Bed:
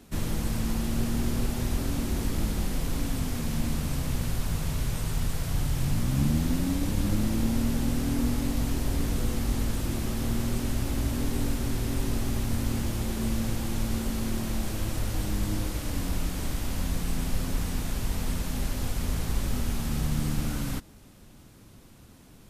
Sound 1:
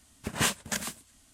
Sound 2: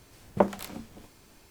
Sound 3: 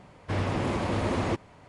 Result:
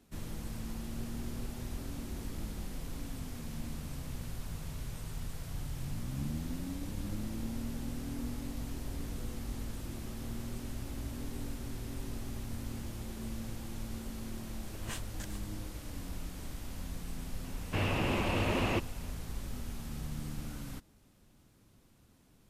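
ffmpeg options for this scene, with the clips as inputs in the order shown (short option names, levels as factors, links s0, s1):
-filter_complex "[0:a]volume=0.251[s0];[3:a]equalizer=f=2700:w=4.1:g=13[s1];[1:a]atrim=end=1.33,asetpts=PTS-STARTPTS,volume=0.15,afade=t=in:d=0.004:c=hsin,afade=t=out:st=1.326:d=0.004:c=hsin,adelay=14480[s2];[s1]atrim=end=1.68,asetpts=PTS-STARTPTS,volume=0.631,afade=t=in:d=0.004:c=hsin,afade=t=out:st=1.676:d=0.004:c=hsin,adelay=17440[s3];[s0][s2][s3]amix=inputs=3:normalize=0"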